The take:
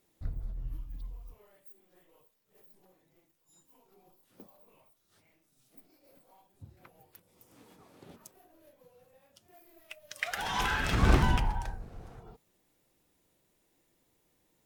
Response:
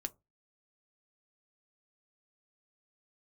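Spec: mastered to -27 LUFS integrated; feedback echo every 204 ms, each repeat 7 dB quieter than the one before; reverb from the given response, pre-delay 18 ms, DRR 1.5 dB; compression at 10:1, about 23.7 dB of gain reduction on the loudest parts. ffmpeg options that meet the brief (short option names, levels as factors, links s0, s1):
-filter_complex "[0:a]acompressor=threshold=0.00708:ratio=10,aecho=1:1:204|408|612|816|1020:0.447|0.201|0.0905|0.0407|0.0183,asplit=2[s0][s1];[1:a]atrim=start_sample=2205,adelay=18[s2];[s1][s2]afir=irnorm=-1:irlink=0,volume=1.06[s3];[s0][s3]amix=inputs=2:normalize=0,volume=13.3"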